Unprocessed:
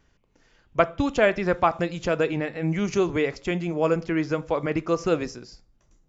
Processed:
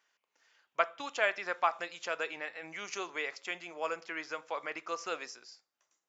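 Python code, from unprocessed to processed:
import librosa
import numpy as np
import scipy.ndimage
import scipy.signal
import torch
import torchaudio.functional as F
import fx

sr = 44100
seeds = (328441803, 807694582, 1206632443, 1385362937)

y = scipy.signal.sosfilt(scipy.signal.butter(2, 940.0, 'highpass', fs=sr, output='sos'), x)
y = F.gain(torch.from_numpy(y), -4.5).numpy()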